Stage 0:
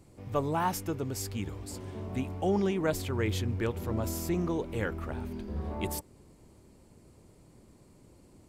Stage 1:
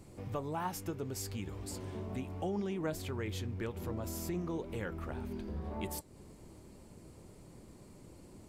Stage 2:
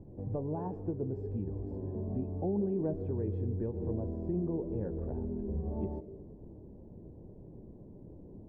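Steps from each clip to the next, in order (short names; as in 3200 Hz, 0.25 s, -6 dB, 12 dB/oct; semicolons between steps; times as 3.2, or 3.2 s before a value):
compressor 2.5:1, threshold -43 dBFS, peak gain reduction 13 dB; flange 1.9 Hz, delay 4.5 ms, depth 2.1 ms, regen +82%; gain +7.5 dB
synth low-pass 430 Hz, resonance Q 4.9; reverb RT60 0.90 s, pre-delay 0.12 s, DRR 17 dB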